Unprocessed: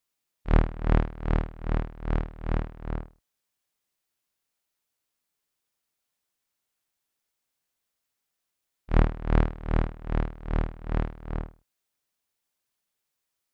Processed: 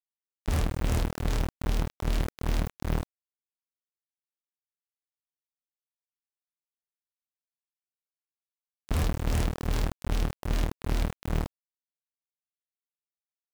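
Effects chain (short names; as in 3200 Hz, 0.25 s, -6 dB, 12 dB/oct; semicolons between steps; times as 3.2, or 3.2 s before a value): de-hum 163.6 Hz, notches 4; wavefolder -24 dBFS; requantised 6-bit, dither none; gain +3.5 dB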